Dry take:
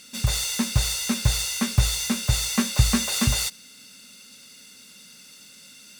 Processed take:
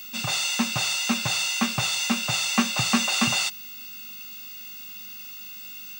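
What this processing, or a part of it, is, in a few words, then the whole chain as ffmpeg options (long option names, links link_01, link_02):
old television with a line whistle: -af "highpass=frequency=160:width=0.5412,highpass=frequency=160:width=1.3066,equalizer=frequency=460:width_type=q:width=4:gain=-6,equalizer=frequency=750:width_type=q:width=4:gain=9,equalizer=frequency=1200:width_type=q:width=4:gain=7,equalizer=frequency=2700:width_type=q:width=4:gain=9,lowpass=frequency=8000:width=0.5412,lowpass=frequency=8000:width=1.3066,aeval=exprs='val(0)+0.0126*sin(2*PI*15625*n/s)':channel_layout=same"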